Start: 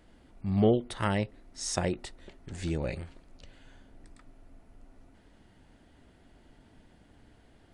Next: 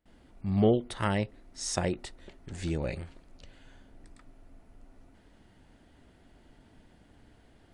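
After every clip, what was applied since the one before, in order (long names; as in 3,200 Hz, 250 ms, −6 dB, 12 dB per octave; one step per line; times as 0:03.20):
noise gate with hold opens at −51 dBFS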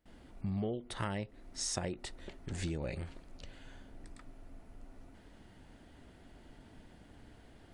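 downward compressor 6 to 1, threshold −36 dBFS, peak gain reduction 16.5 dB
level +2 dB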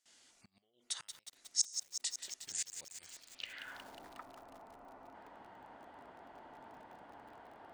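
gate with flip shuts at −28 dBFS, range −27 dB
band-pass filter sweep 6,600 Hz → 920 Hz, 0:03.10–0:03.85
feedback echo at a low word length 181 ms, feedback 80%, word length 11 bits, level −8 dB
level +14.5 dB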